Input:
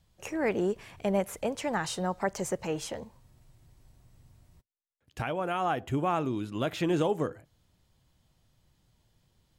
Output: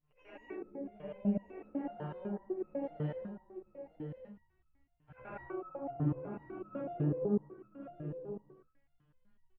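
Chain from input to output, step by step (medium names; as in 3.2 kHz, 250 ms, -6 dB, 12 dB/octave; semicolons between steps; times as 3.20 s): short-time spectra conjugated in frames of 224 ms; low-pass 2.4 kHz 24 dB/octave; low-pass that closes with the level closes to 470 Hz, closed at -30 dBFS; doubling 14 ms -3 dB; on a send: delay 1065 ms -8 dB; on the sum: gated-style reverb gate 250 ms rising, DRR -5.5 dB; resonator arpeggio 8 Hz 150–1300 Hz; trim +3.5 dB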